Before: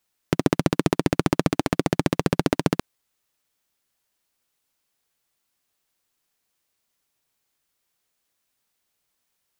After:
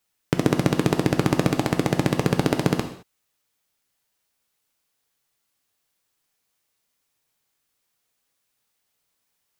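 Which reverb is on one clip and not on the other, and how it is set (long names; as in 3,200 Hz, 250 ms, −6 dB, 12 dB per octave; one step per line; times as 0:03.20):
reverb whose tail is shaped and stops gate 240 ms falling, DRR 5.5 dB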